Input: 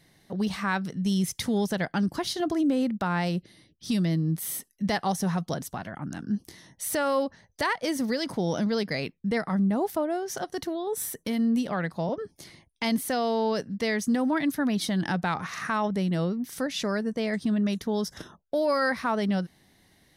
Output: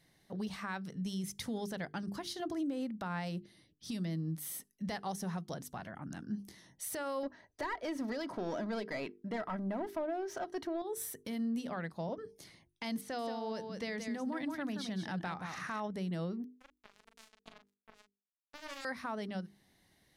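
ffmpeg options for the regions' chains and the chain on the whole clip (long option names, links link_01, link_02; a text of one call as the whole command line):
ffmpeg -i in.wav -filter_complex "[0:a]asettb=1/sr,asplit=3[link_01][link_02][link_03];[link_01]atrim=end=7.234[link_04];[link_02]atrim=start=7.23:end=10.82,asetpts=PTS-STARTPTS,afade=type=in:duration=0.004:curve=qsin,afade=type=out:start_time=3.586:duration=0.004:curve=qsin,asplit=2[link_05][link_06];[link_06]highpass=frequency=720:poles=1,volume=17dB,asoftclip=type=tanh:threshold=-15.5dB[link_07];[link_05][link_07]amix=inputs=2:normalize=0,lowpass=frequency=1100:poles=1,volume=-6dB,aecho=1:1:3.1:0.41,atrim=end_sample=158319[link_08];[link_03]atrim=start=10.816[link_09];[link_04][link_08]acrossfade=duration=0.004:curve1=hsin:curve2=qsin[link_10];[link_10][link_09]acrossfade=duration=0.004:curve1=qsin:curve2=hsin,asettb=1/sr,asplit=3[link_11][link_12][link_13];[link_11]atrim=end=13.014[link_14];[link_12]atrim=start=13.01:end=15.8,asetpts=PTS-STARTPTS,afade=type=in:duration=0.004:curve=qsin,afade=type=out:start_time=2.786:duration=0.004:curve=qsin,acrossover=split=7200[link_15][link_16];[link_16]acompressor=threshold=-52dB:ratio=4:attack=1:release=60[link_17];[link_15][link_17]amix=inputs=2:normalize=0,aecho=1:1:176:0.447,atrim=end_sample=123039[link_18];[link_13]atrim=start=15.796[link_19];[link_14][link_18]acrossfade=duration=0.004:curve1=hsin:curve2=qsin[link_20];[link_20][link_19]acrossfade=duration=0.004:curve1=qsin:curve2=hsin,asettb=1/sr,asplit=3[link_21][link_22][link_23];[link_21]atrim=end=16.444[link_24];[link_22]atrim=start=16.44:end=18.85,asetpts=PTS-STARTPTS,afade=type=in:duration=0.004:curve=qsin,afade=type=out:start_time=2.406:duration=0.004:curve=qsin,bandreject=frequency=50:width_type=h:width=6,bandreject=frequency=100:width_type=h:width=6,bandreject=frequency=150:width_type=h:width=6,bandreject=frequency=200:width_type=h:width=6,bandreject=frequency=250:width_type=h:width=6,bandreject=frequency=300:width_type=h:width=6,acrusher=bits=2:mix=0:aa=0.5,asplit=2[link_25][link_26];[link_26]adelay=40,volume=-7dB[link_27];[link_25][link_27]amix=inputs=2:normalize=0,atrim=end_sample=106281[link_28];[link_23]atrim=start=18.846[link_29];[link_24][link_28]acrossfade=duration=0.004:curve1=hsin:curve2=qsin[link_30];[link_30][link_29]acrossfade=duration=0.004:curve1=qsin:curve2=hsin,bandreject=frequency=50:width_type=h:width=6,bandreject=frequency=100:width_type=h:width=6,bandreject=frequency=150:width_type=h:width=6,bandreject=frequency=200:width_type=h:width=6,bandreject=frequency=250:width_type=h:width=6,bandreject=frequency=300:width_type=h:width=6,bandreject=frequency=350:width_type=h:width=6,bandreject=frequency=400:width_type=h:width=6,bandreject=frequency=450:width_type=h:width=6,alimiter=limit=-21.5dB:level=0:latency=1:release=274,volume=-8dB" out.wav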